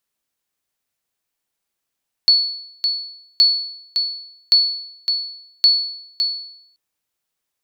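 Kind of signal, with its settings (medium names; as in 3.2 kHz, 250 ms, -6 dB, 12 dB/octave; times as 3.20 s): sonar ping 4.42 kHz, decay 0.74 s, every 1.12 s, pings 4, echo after 0.56 s, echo -7 dB -6 dBFS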